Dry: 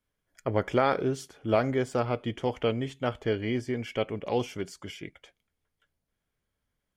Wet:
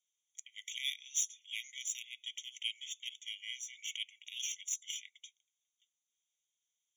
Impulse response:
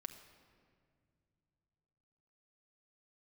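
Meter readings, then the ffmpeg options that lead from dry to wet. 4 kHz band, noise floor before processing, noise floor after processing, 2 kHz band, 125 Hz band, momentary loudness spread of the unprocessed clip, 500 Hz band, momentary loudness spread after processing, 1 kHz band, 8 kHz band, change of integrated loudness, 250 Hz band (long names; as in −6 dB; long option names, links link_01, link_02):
+3.5 dB, −83 dBFS, below −85 dBFS, −8.0 dB, below −40 dB, 12 LU, below −40 dB, 15 LU, below −40 dB, +13.0 dB, −10.0 dB, below −40 dB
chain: -af "asuperpass=centerf=5500:order=4:qfactor=1.6,aeval=exprs='0.0251*(cos(1*acos(clip(val(0)/0.0251,-1,1)))-cos(1*PI/2))+0.00178*(cos(7*acos(clip(val(0)/0.0251,-1,1)))-cos(7*PI/2))':channel_layout=same,afftfilt=real='re*eq(mod(floor(b*sr/1024/1900),2),1)':imag='im*eq(mod(floor(b*sr/1024/1900),2),1)':win_size=1024:overlap=0.75,volume=17.5dB"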